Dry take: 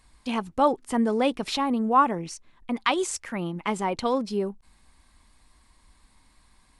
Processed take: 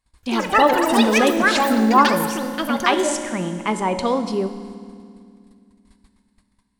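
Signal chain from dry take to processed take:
noise gate −54 dBFS, range −22 dB
delay with pitch and tempo change per echo 139 ms, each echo +7 semitones, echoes 3
convolution reverb RT60 2.2 s, pre-delay 3 ms, DRR 7 dB
level +4.5 dB

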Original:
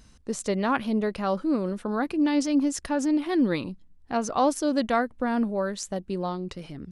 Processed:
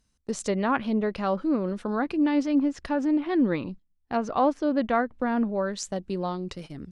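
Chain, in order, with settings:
noise gate −40 dBFS, range −18 dB
treble cut that deepens with the level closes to 2,500 Hz, closed at −21.5 dBFS
high-shelf EQ 5,600 Hz +7 dB, from 0:02.58 −2.5 dB, from 0:04.99 +5.5 dB

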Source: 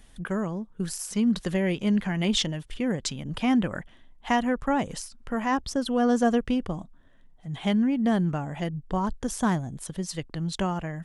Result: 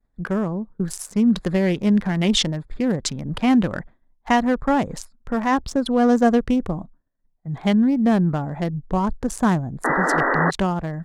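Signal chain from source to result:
adaptive Wiener filter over 15 samples
downward expander −39 dBFS
sound drawn into the spectrogram noise, 0:09.84–0:10.51, 230–2,000 Hz −26 dBFS
level +6 dB

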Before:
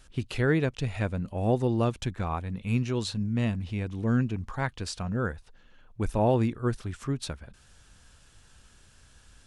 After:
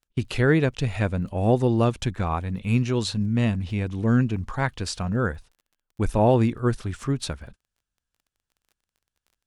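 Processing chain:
noise gate −46 dBFS, range −36 dB
surface crackle 26 per second −52 dBFS
level +5 dB

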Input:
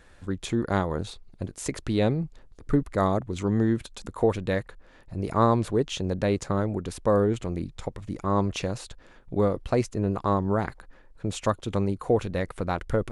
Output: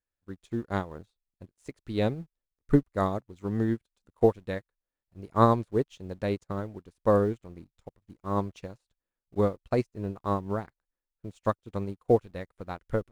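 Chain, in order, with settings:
in parallel at −8 dB: centre clipping without the shift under −34.5 dBFS
on the sum: expander for the loud parts 2.5 to 1, over −41 dBFS

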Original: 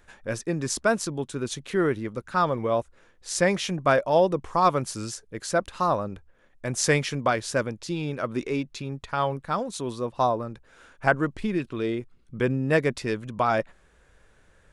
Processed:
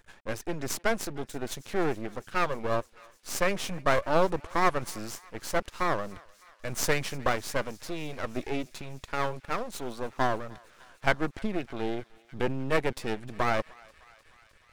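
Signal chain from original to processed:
half-wave rectification
feedback echo with a high-pass in the loop 304 ms, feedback 83%, high-pass 980 Hz, level −22 dB

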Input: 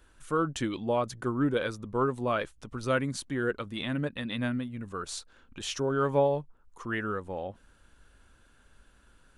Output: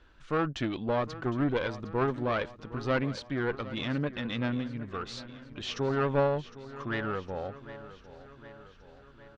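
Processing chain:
one-sided soft clipper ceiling −30 dBFS
low-pass filter 4,900 Hz 24 dB per octave
repeating echo 759 ms, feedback 58%, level −16 dB
level +1.5 dB

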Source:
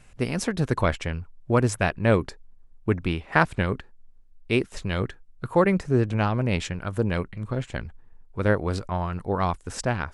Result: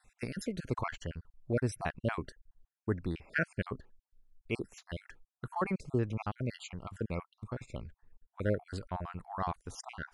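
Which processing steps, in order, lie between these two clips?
time-frequency cells dropped at random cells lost 45%
dynamic equaliser 3,500 Hz, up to −5 dB, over −54 dBFS, Q 4.6
level −9 dB

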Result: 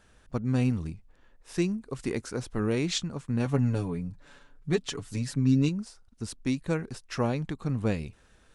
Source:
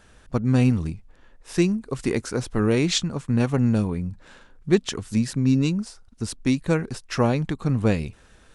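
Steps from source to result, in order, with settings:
0:03.45–0:05.69: comb filter 7 ms, depth 71%
level −7 dB

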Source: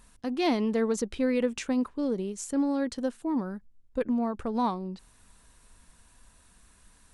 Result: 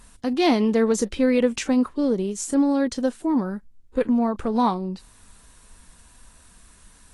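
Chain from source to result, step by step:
level +7 dB
Ogg Vorbis 32 kbit/s 48,000 Hz

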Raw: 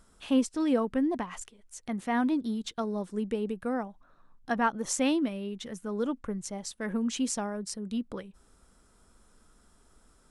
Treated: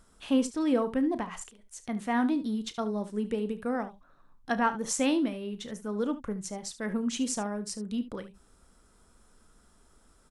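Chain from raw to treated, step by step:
0:03.74–0:04.52: dynamic equaliser 3,300 Hz, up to +7 dB, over −57 dBFS, Q 0.94
ambience of single reflections 33 ms −14 dB, 73 ms −14.5 dB

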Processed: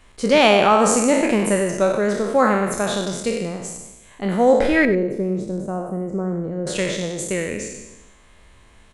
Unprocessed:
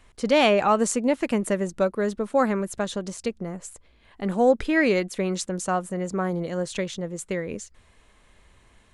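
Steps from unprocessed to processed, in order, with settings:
peak hold with a decay on every bin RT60 1.06 s
0:04.85–0:06.67: drawn EQ curve 340 Hz 0 dB, 3,900 Hz −27 dB, 10,000 Hz −23 dB
single-tap delay 97 ms −13.5 dB
level +3 dB

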